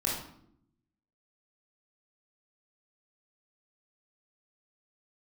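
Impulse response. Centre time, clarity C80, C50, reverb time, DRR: 48 ms, 6.0 dB, 2.0 dB, 0.70 s, −4.5 dB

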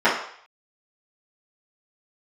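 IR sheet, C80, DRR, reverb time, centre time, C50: 9.0 dB, −13.0 dB, 0.60 s, 37 ms, 5.0 dB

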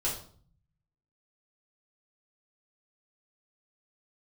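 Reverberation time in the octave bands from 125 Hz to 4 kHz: 1.2, 0.80, 0.55, 0.50, 0.40, 0.40 seconds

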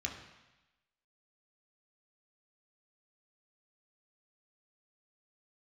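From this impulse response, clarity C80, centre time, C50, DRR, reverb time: 9.0 dB, 30 ms, 7.0 dB, 0.5 dB, 1.0 s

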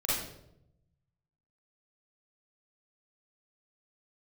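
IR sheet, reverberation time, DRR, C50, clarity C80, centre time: 0.80 s, −9.0 dB, −2.5 dB, 4.0 dB, 72 ms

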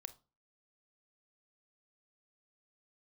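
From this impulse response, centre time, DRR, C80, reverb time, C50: 3 ms, 12.0 dB, 24.5 dB, 0.35 s, 17.0 dB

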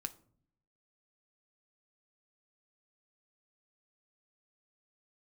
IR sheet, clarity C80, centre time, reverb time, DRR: 22.5 dB, 4 ms, non-exponential decay, 9.0 dB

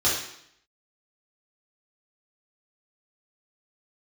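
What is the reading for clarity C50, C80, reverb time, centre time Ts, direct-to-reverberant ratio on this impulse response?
2.5 dB, 6.5 dB, 0.70 s, 48 ms, −8.0 dB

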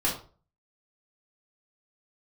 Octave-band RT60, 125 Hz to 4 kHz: 0.50, 0.40, 0.40, 0.35, 0.30, 0.30 seconds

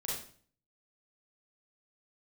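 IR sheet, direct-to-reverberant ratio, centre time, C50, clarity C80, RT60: −6.0 dB, 53 ms, 0.5 dB, 6.0 dB, 0.45 s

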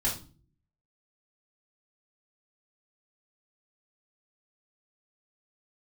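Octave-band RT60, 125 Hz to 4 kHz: 0.80, 0.65, 0.45, 0.35, 0.30, 0.30 seconds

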